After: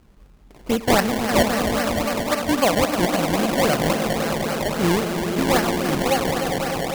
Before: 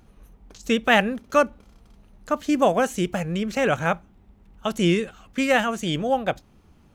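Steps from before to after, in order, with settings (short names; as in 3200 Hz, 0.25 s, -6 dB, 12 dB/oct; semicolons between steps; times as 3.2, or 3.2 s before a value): swelling echo 0.101 s, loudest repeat 5, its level -9 dB; decimation with a swept rate 24×, swing 100% 3.7 Hz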